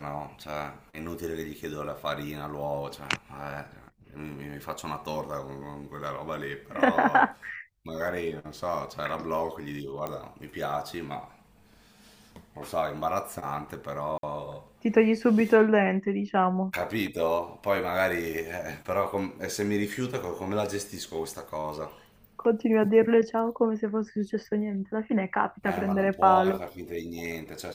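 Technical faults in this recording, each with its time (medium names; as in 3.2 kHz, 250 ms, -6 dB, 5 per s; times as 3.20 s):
10.07 s: pop -19 dBFS
14.18–14.23 s: dropout 52 ms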